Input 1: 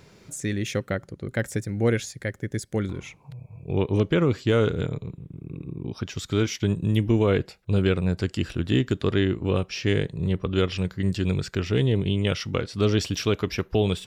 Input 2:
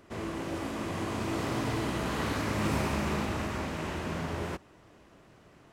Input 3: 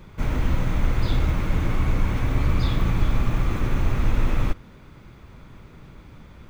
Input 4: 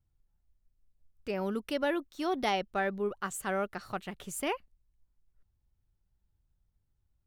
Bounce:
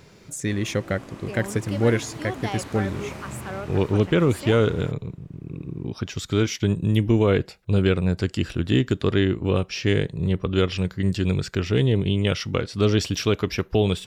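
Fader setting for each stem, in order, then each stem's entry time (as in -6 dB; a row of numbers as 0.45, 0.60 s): +2.0 dB, -7.5 dB, off, -2.0 dB; 0.00 s, 0.35 s, off, 0.00 s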